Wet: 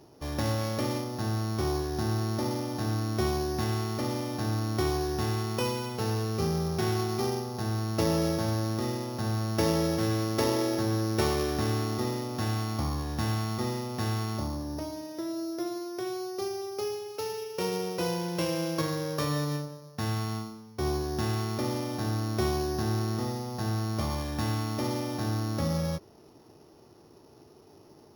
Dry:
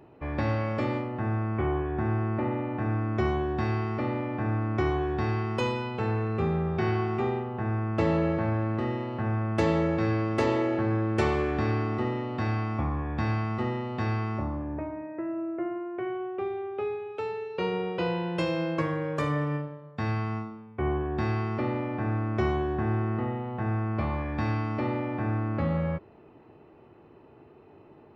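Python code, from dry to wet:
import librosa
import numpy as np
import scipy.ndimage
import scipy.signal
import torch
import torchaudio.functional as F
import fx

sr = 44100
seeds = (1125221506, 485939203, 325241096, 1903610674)

y = np.r_[np.sort(x[:len(x) // 8 * 8].reshape(-1, 8), axis=1).ravel(), x[len(x) // 8 * 8:]]
y = F.gain(torch.from_numpy(y), -1.5).numpy()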